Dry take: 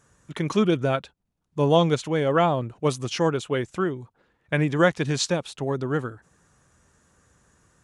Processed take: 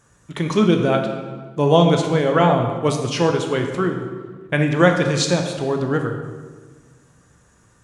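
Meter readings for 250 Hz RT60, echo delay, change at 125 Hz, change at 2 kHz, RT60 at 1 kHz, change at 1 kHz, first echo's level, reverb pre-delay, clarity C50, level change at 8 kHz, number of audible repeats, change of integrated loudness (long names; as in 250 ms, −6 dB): 1.8 s, no echo audible, +6.0 dB, +5.0 dB, 1.4 s, +5.5 dB, no echo audible, 13 ms, 5.5 dB, +4.5 dB, no echo audible, +5.0 dB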